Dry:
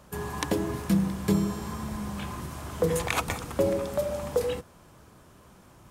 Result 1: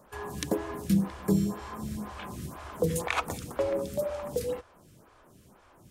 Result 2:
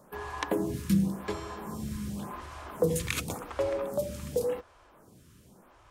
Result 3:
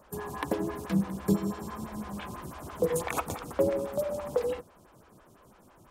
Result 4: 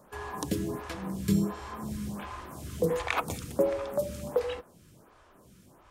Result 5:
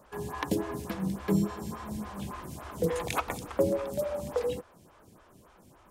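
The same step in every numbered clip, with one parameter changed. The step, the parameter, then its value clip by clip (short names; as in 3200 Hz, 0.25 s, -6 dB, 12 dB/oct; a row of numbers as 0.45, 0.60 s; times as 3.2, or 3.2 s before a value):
photocell phaser, rate: 2, 0.9, 6, 1.4, 3.5 Hz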